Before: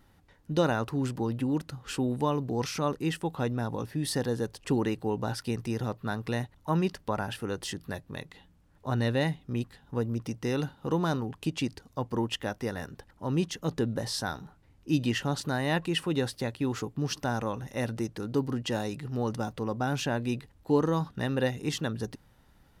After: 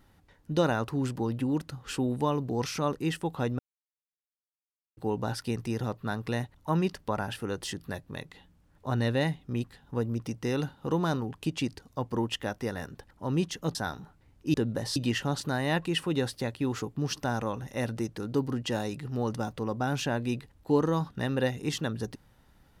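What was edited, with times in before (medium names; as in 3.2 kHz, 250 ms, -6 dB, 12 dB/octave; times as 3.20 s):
3.59–4.97 s: mute
13.75–14.17 s: move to 14.96 s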